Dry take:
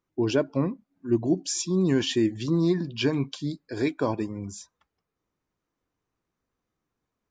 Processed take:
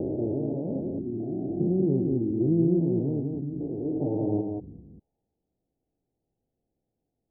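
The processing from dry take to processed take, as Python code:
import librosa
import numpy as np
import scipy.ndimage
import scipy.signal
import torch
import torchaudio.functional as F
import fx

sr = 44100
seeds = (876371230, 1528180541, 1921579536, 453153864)

p1 = fx.spec_steps(x, sr, hold_ms=400)
p2 = scipy.signal.sosfilt(scipy.signal.butter(16, 830.0, 'lowpass', fs=sr, output='sos'), p1)
p3 = fx.comb(p2, sr, ms=6.7, depth=0.71, at=(3.84, 4.51))
p4 = p3 + fx.echo_single(p3, sr, ms=189, db=-4.0, dry=0)
y = p4 * 10.0 ** (2.0 / 20.0)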